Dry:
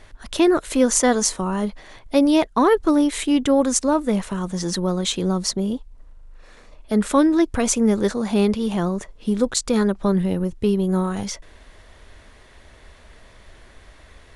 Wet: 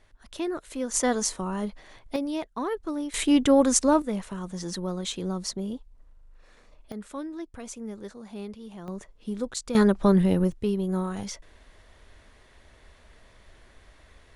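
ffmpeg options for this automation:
-af "asetnsamples=n=441:p=0,asendcmd='0.94 volume volume -7dB;2.16 volume volume -14dB;3.14 volume volume -1.5dB;4.02 volume volume -9dB;6.92 volume volume -19.5dB;8.88 volume volume -11dB;9.75 volume volume 0dB;10.52 volume volume -7dB',volume=0.2"

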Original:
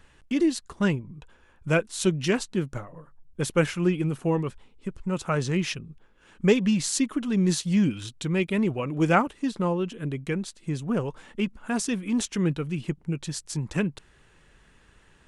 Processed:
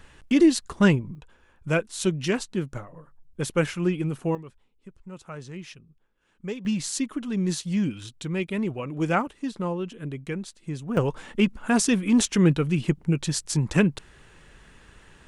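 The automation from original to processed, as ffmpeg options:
-af "asetnsamples=n=441:p=0,asendcmd='1.15 volume volume -1dB;4.35 volume volume -13dB;6.65 volume volume -3dB;10.97 volume volume 6dB',volume=1.88"

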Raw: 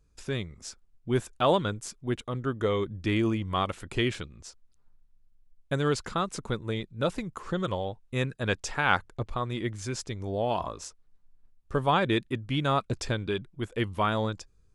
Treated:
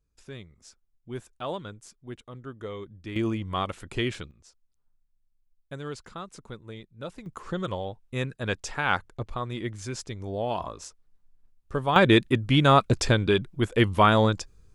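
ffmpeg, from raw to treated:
-af "asetnsamples=n=441:p=0,asendcmd='3.16 volume volume -1dB;4.31 volume volume -10dB;7.26 volume volume -1dB;11.96 volume volume 8dB',volume=0.316"

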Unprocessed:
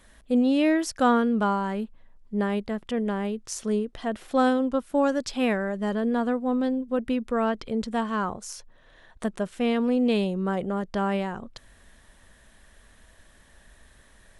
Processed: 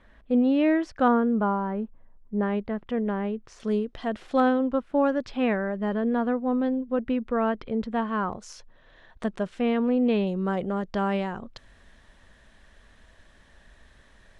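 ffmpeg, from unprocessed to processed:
-af "asetnsamples=n=441:p=0,asendcmd='1.08 lowpass f 1300;2.43 lowpass f 2200;3.6 lowpass f 5300;4.4 lowpass f 2600;8.33 lowpass f 4900;9.61 lowpass f 2600;10.27 lowpass f 5500',lowpass=2400"

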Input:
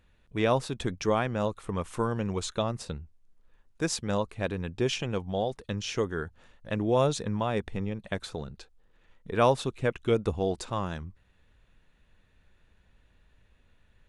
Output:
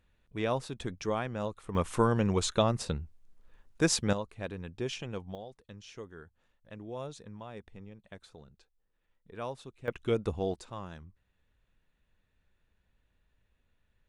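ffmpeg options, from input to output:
-af "asetnsamples=n=441:p=0,asendcmd='1.75 volume volume 3dB;4.13 volume volume -7.5dB;5.35 volume volume -16dB;9.88 volume volume -4dB;10.54 volume volume -10.5dB',volume=0.501"

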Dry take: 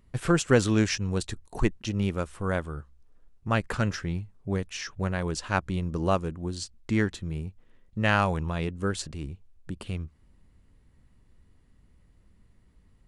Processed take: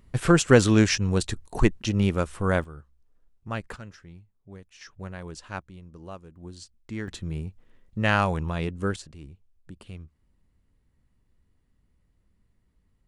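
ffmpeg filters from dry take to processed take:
-af "asetnsamples=n=441:p=0,asendcmd='2.64 volume volume -6.5dB;3.76 volume volume -16dB;4.81 volume volume -9dB;5.62 volume volume -16dB;6.36 volume volume -9dB;7.08 volume volume 1dB;8.96 volume volume -8dB',volume=1.68"

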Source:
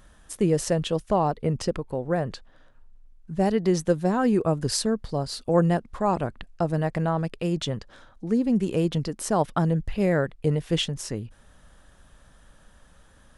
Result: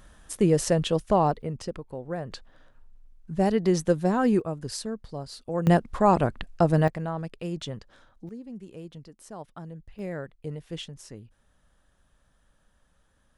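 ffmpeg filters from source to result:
-af "asetnsamples=n=441:p=0,asendcmd='1.42 volume volume -7.5dB;2.32 volume volume -0.5dB;4.4 volume volume -8.5dB;5.67 volume volume 4dB;6.88 volume volume -6.5dB;8.29 volume volume -18dB;9.99 volume volume -12dB',volume=1.12"

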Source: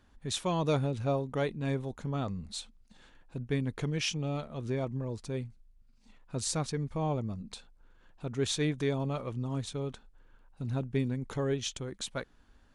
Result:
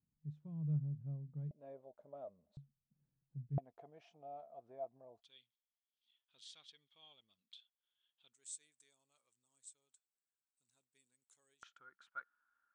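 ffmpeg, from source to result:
-af "asetnsamples=n=441:p=0,asendcmd='1.51 bandpass f 610;2.57 bandpass f 140;3.58 bandpass f 690;5.22 bandpass f 3300;8.33 bandpass f 8000;11.63 bandpass f 1400',bandpass=f=150:t=q:w=15:csg=0"

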